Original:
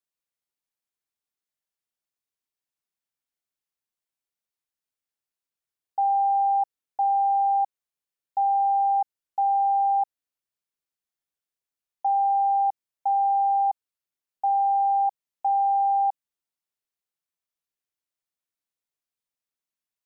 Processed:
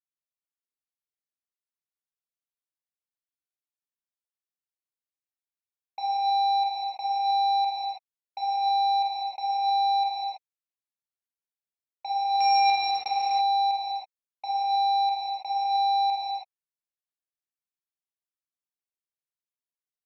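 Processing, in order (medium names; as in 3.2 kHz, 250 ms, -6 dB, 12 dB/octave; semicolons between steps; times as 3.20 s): 12.40–13.08 s: dynamic bell 720 Hz, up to +3 dB, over -32 dBFS, Q 0.91; Chebyshev shaper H 3 -12 dB, 5 -12 dB, 7 -12 dB, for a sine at -15.5 dBFS; gated-style reverb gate 350 ms flat, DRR -7.5 dB; trim -7.5 dB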